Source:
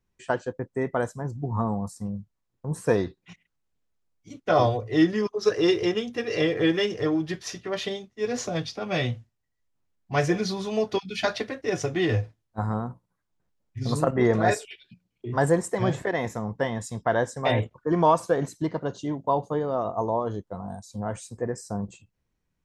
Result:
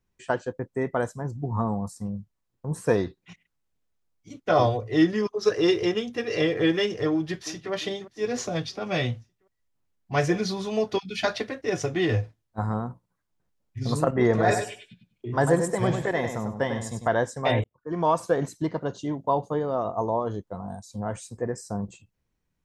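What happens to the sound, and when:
7.11–7.72 echo throw 0.35 s, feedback 55%, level -15.5 dB
14.28–17.08 feedback echo 98 ms, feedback 20%, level -7 dB
17.64–18.28 fade in

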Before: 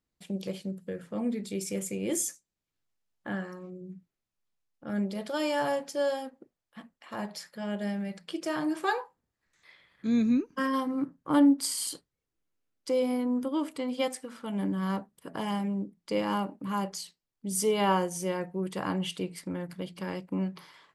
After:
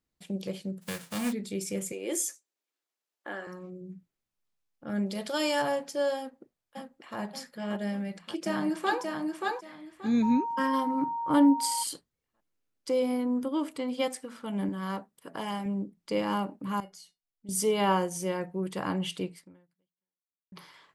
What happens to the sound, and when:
0.81–1.31 spectral whitening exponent 0.3
1.92–3.47 HPF 320 Hz 24 dB/oct
5.06–5.62 bell 7000 Hz +7 dB 2.9 oct
6.17–7.18 echo throw 0.58 s, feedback 60%, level -4.5 dB
7.88–9.02 echo throw 0.58 s, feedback 20%, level -3 dB
10.22–11.82 whine 930 Hz -30 dBFS
14.69–15.66 low shelf 220 Hz -9 dB
16.8–17.49 resonator 720 Hz, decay 0.15 s, mix 80%
19.27–20.52 fade out exponential

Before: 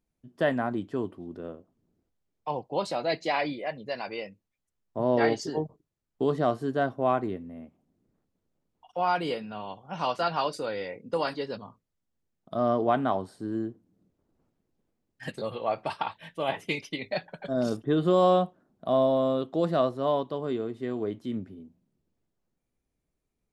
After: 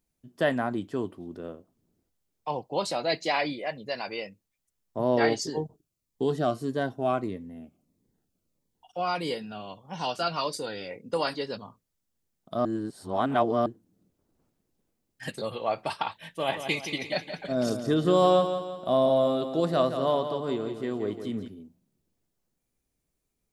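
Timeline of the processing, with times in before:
5.39–10.91 cascading phaser falling 1.6 Hz
12.65–13.66 reverse
16.21–21.48 feedback echo 0.172 s, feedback 45%, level -9 dB
whole clip: high shelf 4200 Hz +9.5 dB

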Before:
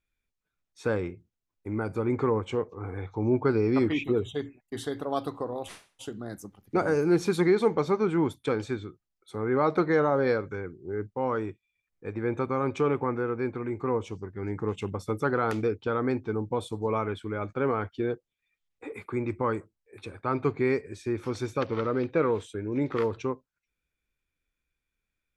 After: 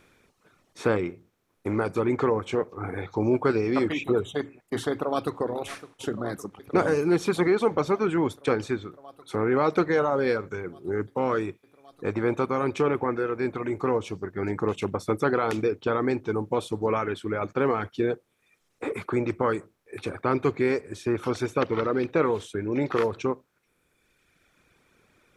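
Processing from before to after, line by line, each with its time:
4.91–5.37 echo throw 0.56 s, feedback 85%, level -18 dB
whole clip: per-bin compression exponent 0.6; reverb removal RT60 1.8 s

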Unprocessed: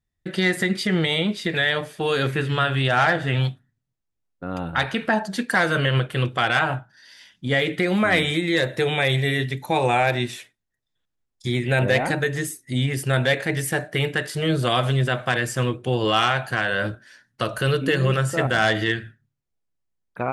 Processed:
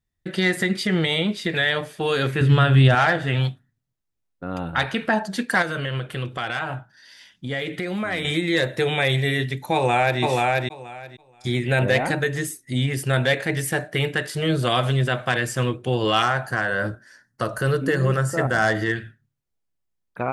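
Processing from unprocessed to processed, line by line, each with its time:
2.41–2.95 low shelf 290 Hz +12 dB
5.62–8.25 compressor 2:1, threshold -28 dBFS
9.74–10.2 echo throw 0.48 s, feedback 15%, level -1.5 dB
16.22–18.96 band shelf 3000 Hz -9.5 dB 1 oct

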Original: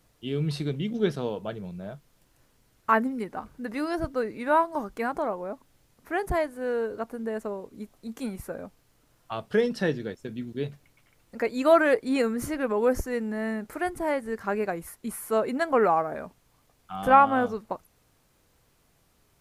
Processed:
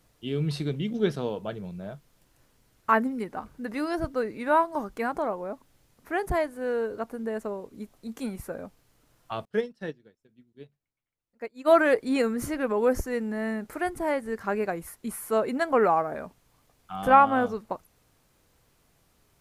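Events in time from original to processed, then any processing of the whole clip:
9.45–11.71 upward expander 2.5:1, over -36 dBFS

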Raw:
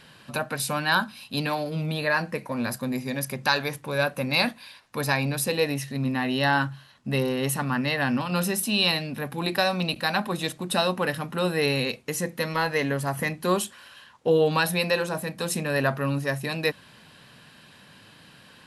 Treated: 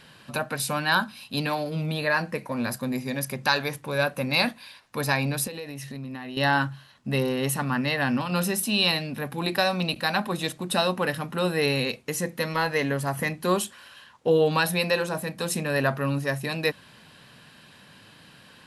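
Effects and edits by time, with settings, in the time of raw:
5.47–6.37 compressor 16:1, threshold -32 dBFS

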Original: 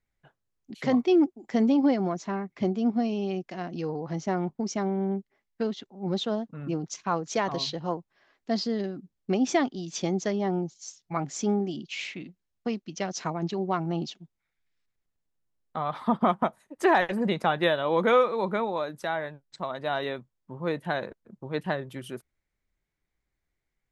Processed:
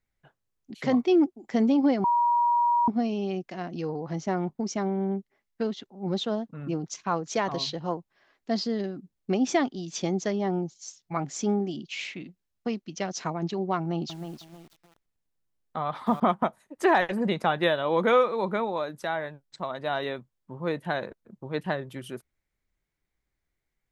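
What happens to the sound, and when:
2.04–2.88 bleep 955 Hz -19.5 dBFS
13.78–16.2 lo-fi delay 0.315 s, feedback 35%, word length 8-bit, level -8 dB

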